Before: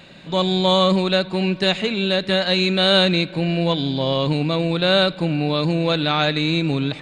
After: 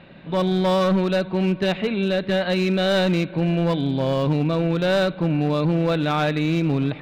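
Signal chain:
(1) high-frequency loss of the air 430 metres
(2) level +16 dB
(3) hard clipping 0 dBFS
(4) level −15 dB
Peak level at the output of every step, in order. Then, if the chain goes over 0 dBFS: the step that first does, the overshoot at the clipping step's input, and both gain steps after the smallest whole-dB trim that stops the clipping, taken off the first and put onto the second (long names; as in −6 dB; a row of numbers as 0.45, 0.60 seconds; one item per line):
−8.5, +7.5, 0.0, −15.0 dBFS
step 2, 7.5 dB
step 2 +8 dB, step 4 −7 dB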